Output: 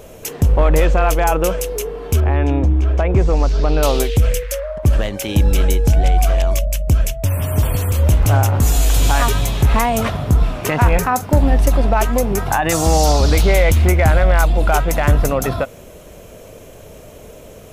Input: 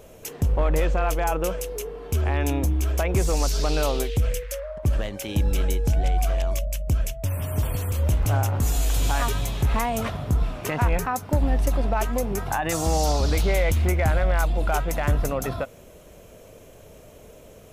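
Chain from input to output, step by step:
0:02.20–0:03.83: head-to-tape spacing loss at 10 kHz 29 dB
0:10.81–0:11.53: double-tracking delay 44 ms −13.5 dB
level +8.5 dB

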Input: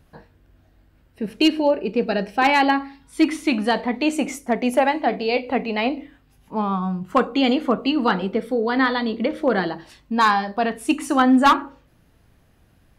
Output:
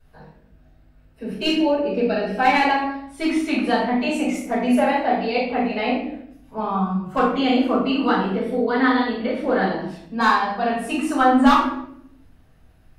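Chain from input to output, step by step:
rectangular room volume 150 cubic metres, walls mixed, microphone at 5.2 metres
level −15.5 dB

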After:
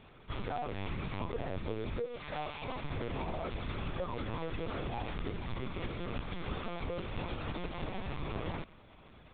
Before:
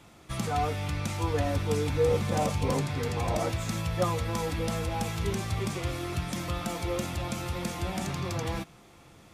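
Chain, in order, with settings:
0:02.06–0:02.84: high-pass filter 1,100 Hz 6 dB per octave
downward compressor 16 to 1, threshold −31 dBFS, peak gain reduction 12 dB
linear-prediction vocoder at 8 kHz pitch kept
level −2 dB

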